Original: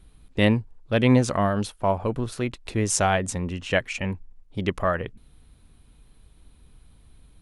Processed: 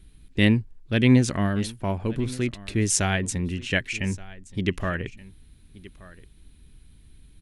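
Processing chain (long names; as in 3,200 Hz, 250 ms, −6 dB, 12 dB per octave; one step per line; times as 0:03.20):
flat-topped bell 790 Hz −9.5 dB
single-tap delay 1,175 ms −20 dB
level +1.5 dB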